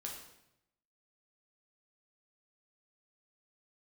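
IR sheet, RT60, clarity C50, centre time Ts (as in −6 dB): 0.80 s, 4.0 dB, 39 ms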